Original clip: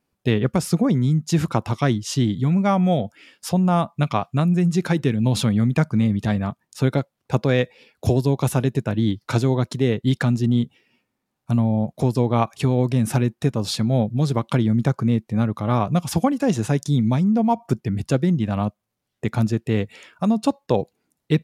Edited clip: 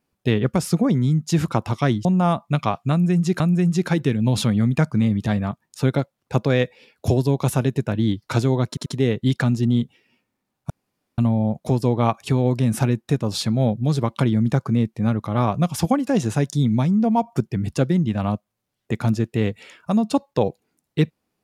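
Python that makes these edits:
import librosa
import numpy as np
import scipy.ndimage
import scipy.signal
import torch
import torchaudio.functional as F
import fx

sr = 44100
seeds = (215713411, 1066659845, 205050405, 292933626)

y = fx.edit(x, sr, fx.cut(start_s=2.05, length_s=1.48),
    fx.repeat(start_s=4.39, length_s=0.49, count=2),
    fx.stutter(start_s=9.67, slice_s=0.09, count=3),
    fx.insert_room_tone(at_s=11.51, length_s=0.48), tone=tone)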